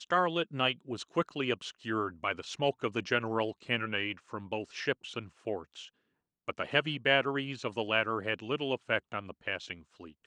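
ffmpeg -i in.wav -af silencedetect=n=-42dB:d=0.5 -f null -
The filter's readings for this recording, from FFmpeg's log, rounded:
silence_start: 5.86
silence_end: 6.48 | silence_duration: 0.62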